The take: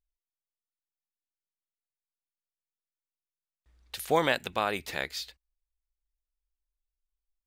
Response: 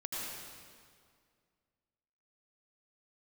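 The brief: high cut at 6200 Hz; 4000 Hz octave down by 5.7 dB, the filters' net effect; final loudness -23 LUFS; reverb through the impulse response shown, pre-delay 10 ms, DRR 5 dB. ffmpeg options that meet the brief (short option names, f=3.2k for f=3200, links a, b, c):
-filter_complex "[0:a]lowpass=6.2k,equalizer=f=4k:t=o:g=-6.5,asplit=2[a][b];[1:a]atrim=start_sample=2205,adelay=10[c];[b][c]afir=irnorm=-1:irlink=0,volume=-7.5dB[d];[a][d]amix=inputs=2:normalize=0,volume=6.5dB"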